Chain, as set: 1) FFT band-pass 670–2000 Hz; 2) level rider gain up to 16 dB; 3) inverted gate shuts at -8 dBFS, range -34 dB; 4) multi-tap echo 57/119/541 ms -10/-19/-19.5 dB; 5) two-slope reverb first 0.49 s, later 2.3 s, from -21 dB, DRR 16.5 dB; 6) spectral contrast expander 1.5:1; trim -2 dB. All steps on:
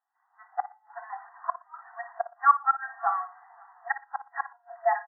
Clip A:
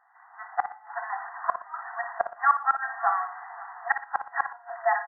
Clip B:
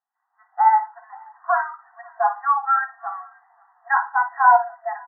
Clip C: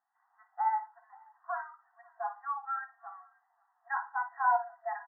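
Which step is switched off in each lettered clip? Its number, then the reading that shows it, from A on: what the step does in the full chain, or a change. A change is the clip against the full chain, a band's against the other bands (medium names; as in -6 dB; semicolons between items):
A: 6, momentary loudness spread change -6 LU; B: 3, momentary loudness spread change -1 LU; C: 2, momentary loudness spread change +2 LU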